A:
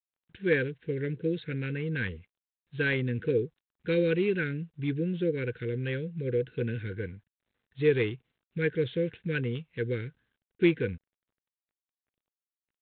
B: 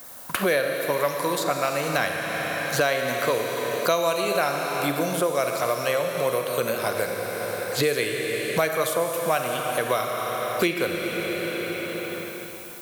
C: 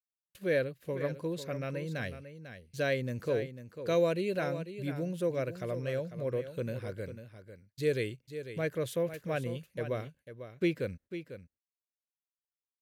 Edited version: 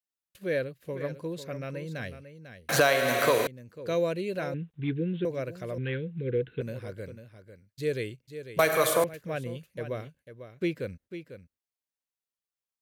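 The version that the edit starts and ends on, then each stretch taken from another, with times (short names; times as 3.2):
C
2.69–3.47 from B
4.54–5.25 from A
5.78–6.61 from A
8.59–9.04 from B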